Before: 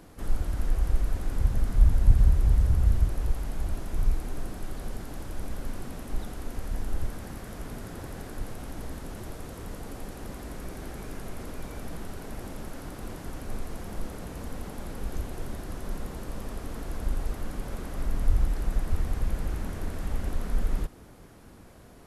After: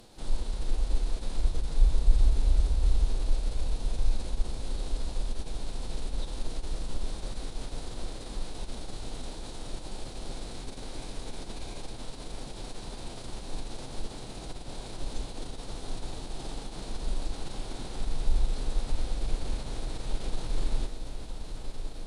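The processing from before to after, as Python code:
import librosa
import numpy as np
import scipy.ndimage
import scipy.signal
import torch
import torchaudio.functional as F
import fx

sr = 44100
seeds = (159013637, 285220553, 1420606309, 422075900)

y = fx.graphic_eq_15(x, sr, hz=(100, 250, 1600, 4000, 10000), db=(-11, -7, -8, 11, 4))
y = fx.echo_diffused(y, sr, ms=1083, feedback_pct=75, wet_db=-9)
y = fx.pitch_keep_formants(y, sr, semitones=-6.5)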